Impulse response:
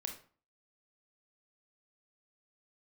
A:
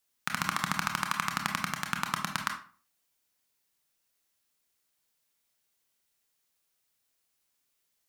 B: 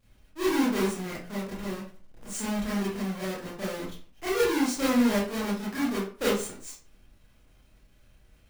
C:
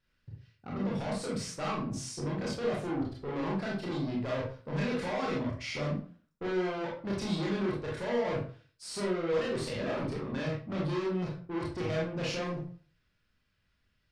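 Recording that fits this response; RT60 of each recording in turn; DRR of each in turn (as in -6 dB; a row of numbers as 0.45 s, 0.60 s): A; 0.40 s, 0.40 s, 0.40 s; 3.5 dB, -9.5 dB, -4.5 dB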